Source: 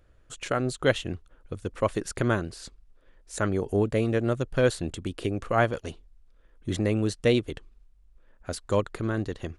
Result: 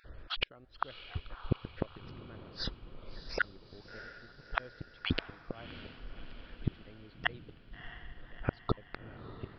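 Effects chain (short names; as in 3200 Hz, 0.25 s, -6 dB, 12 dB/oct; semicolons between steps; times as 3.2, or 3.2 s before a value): random spectral dropouts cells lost 24%; flipped gate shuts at -25 dBFS, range -40 dB; downsampling 11025 Hz; diffused feedback echo 0.648 s, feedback 57%, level -13 dB; gain +11 dB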